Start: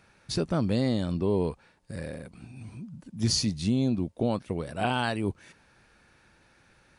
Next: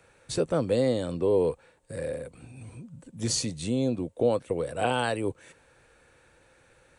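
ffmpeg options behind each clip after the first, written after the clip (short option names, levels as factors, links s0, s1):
-filter_complex "[0:a]equalizer=f=200:t=o:w=0.33:g=-9,equalizer=f=500:t=o:w=0.33:g=11,equalizer=f=5000:t=o:w=0.33:g=-7,equalizer=f=8000:t=o:w=0.33:g=9,acrossover=split=120|430|4700[s0][s1][s2][s3];[s0]acompressor=threshold=0.00562:ratio=6[s4];[s4][s1][s2][s3]amix=inputs=4:normalize=0"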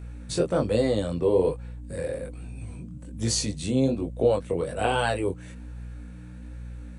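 -af "aeval=exprs='val(0)+0.01*(sin(2*PI*60*n/s)+sin(2*PI*2*60*n/s)/2+sin(2*PI*3*60*n/s)/3+sin(2*PI*4*60*n/s)/4+sin(2*PI*5*60*n/s)/5)':c=same,flanger=delay=18:depth=5:speed=1.2,volume=1.78"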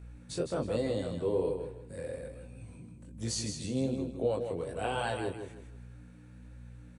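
-af "aecho=1:1:159|318|477|636:0.447|0.13|0.0376|0.0109,volume=0.355"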